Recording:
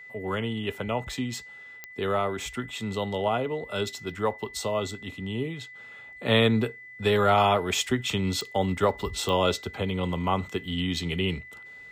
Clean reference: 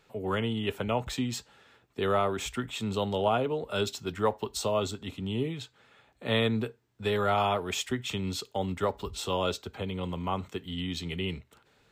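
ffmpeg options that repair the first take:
-af "adeclick=t=4,bandreject=f=2000:w=30,asetnsamples=n=441:p=0,asendcmd='5.75 volume volume -5.5dB',volume=1"

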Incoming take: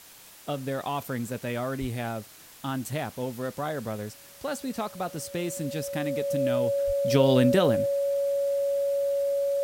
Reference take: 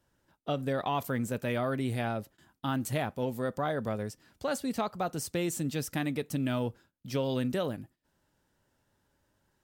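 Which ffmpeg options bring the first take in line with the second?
-filter_complex "[0:a]bandreject=f=560:w=30,asplit=3[s0][s1][s2];[s0]afade=t=out:st=1.8:d=0.02[s3];[s1]highpass=f=140:w=0.5412,highpass=f=140:w=1.3066,afade=t=in:st=1.8:d=0.02,afade=t=out:st=1.92:d=0.02[s4];[s2]afade=t=in:st=1.92:d=0.02[s5];[s3][s4][s5]amix=inputs=3:normalize=0,asplit=3[s6][s7][s8];[s6]afade=t=out:st=6.86:d=0.02[s9];[s7]highpass=f=140:w=0.5412,highpass=f=140:w=1.3066,afade=t=in:st=6.86:d=0.02,afade=t=out:st=6.98:d=0.02[s10];[s8]afade=t=in:st=6.98:d=0.02[s11];[s9][s10][s11]amix=inputs=3:normalize=0,afwtdn=0.0035,asetnsamples=n=441:p=0,asendcmd='6.78 volume volume -9.5dB',volume=1"

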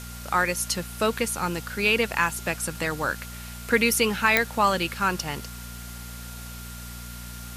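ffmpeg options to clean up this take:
-af "adeclick=t=4,bandreject=f=59.4:t=h:w=4,bandreject=f=118.8:t=h:w=4,bandreject=f=178.2:t=h:w=4,bandreject=f=237.6:t=h:w=4,bandreject=f=1400:w=30,afwtdn=0.0079"

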